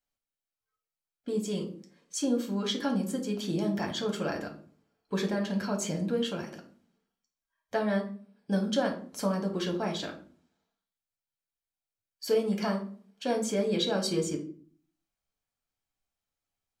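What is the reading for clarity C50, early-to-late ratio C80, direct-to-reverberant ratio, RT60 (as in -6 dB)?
10.0 dB, 15.5 dB, 1.5 dB, 0.45 s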